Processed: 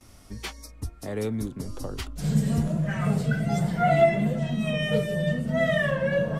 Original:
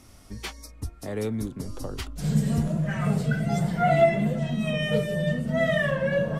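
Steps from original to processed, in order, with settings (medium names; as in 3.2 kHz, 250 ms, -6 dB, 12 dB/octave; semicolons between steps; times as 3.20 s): gate with hold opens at -43 dBFS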